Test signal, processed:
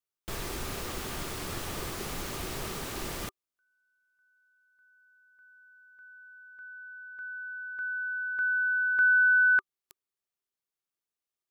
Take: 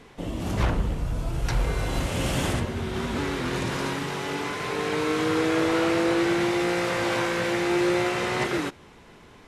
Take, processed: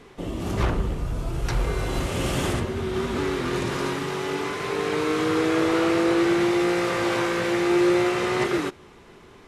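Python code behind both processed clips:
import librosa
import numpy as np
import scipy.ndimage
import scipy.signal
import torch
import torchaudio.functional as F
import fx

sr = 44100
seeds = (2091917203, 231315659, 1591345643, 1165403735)

y = fx.small_body(x, sr, hz=(380.0, 1200.0), ring_ms=45, db=7)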